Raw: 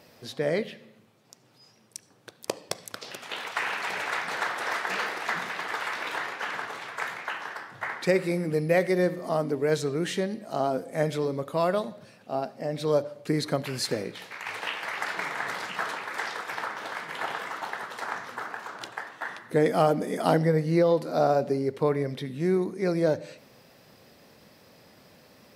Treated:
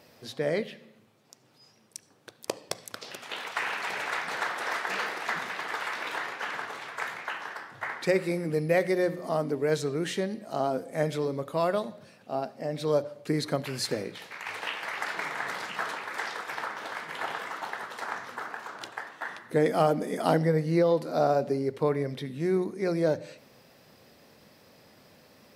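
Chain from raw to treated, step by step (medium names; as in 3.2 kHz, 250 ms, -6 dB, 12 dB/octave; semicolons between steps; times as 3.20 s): hum notches 60/120/180 Hz; trim -1.5 dB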